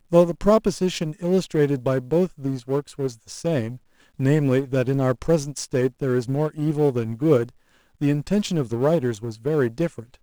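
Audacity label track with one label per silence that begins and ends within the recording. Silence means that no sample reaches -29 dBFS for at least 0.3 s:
3.750000	4.200000	silence
7.490000	8.020000	silence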